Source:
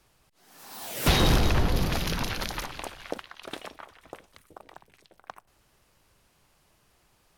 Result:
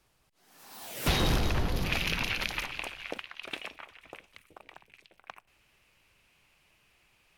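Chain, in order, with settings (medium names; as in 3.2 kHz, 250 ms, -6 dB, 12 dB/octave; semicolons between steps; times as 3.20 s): peaking EQ 2.5 kHz +2 dB 0.81 oct, from 1.85 s +14 dB; trim -5.5 dB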